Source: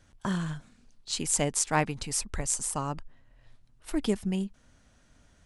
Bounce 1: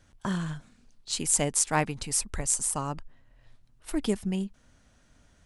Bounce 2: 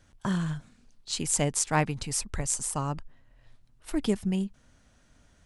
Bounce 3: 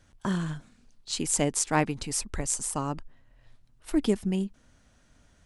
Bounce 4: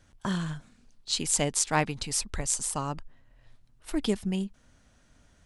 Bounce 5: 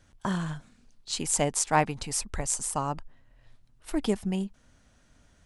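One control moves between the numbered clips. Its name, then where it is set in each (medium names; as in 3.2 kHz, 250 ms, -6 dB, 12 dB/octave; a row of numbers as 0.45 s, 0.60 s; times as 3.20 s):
dynamic bell, frequency: 10 kHz, 120 Hz, 310 Hz, 3.9 kHz, 790 Hz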